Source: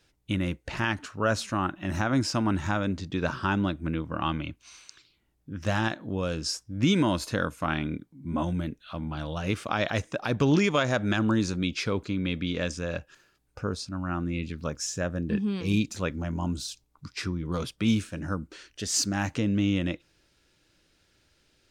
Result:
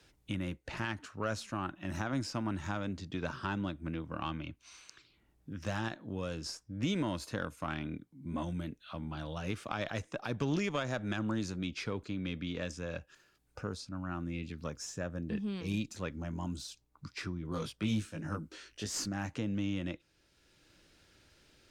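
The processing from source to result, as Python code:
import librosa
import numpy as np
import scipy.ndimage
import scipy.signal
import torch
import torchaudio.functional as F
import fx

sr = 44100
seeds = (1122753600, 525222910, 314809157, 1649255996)

y = fx.wow_flutter(x, sr, seeds[0], rate_hz=2.1, depth_cents=20.0)
y = fx.doubler(y, sr, ms=19.0, db=-2, at=(17.5, 19.08))
y = fx.cheby_harmonics(y, sr, harmonics=(4,), levels_db=(-24,), full_scale_db=-11.0)
y = fx.band_squash(y, sr, depth_pct=40)
y = y * 10.0 ** (-9.0 / 20.0)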